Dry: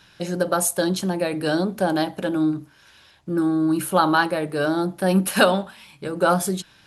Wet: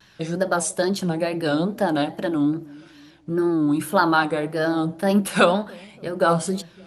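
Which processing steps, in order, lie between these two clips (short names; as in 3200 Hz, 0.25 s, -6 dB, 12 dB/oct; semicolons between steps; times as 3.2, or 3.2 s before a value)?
high shelf 7400 Hz -6.5 dB; wow and flutter 140 cents; dark delay 0.288 s, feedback 46%, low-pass 520 Hz, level -21.5 dB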